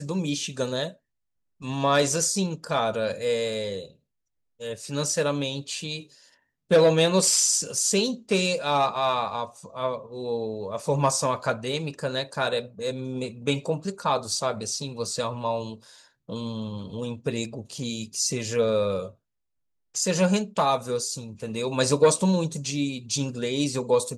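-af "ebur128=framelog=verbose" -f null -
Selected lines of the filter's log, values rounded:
Integrated loudness:
  I:         -25.7 LUFS
  Threshold: -36.1 LUFS
Loudness range:
  LRA:         7.6 LU
  Threshold: -46.3 LUFS
  LRA low:   -30.0 LUFS
  LRA high:  -22.5 LUFS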